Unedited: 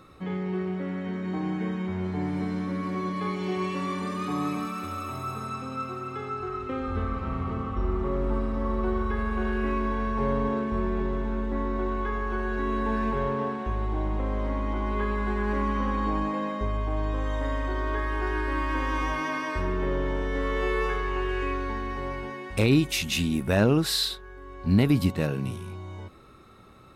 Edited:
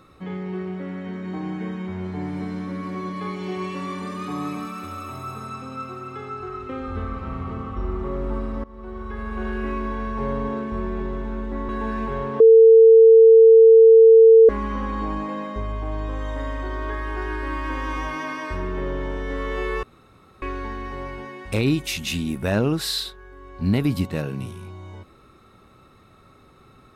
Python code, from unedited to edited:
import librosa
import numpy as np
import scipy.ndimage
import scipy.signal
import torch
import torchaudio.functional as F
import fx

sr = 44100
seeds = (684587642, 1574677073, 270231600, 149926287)

y = fx.edit(x, sr, fx.fade_in_from(start_s=8.64, length_s=0.83, floor_db=-21.5),
    fx.cut(start_s=11.69, length_s=1.05),
    fx.bleep(start_s=13.45, length_s=2.09, hz=450.0, db=-6.5),
    fx.room_tone_fill(start_s=20.88, length_s=0.59), tone=tone)